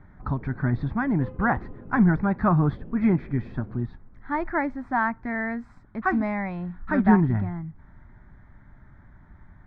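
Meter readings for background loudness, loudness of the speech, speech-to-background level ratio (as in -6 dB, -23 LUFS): -44.0 LUFS, -25.5 LUFS, 18.5 dB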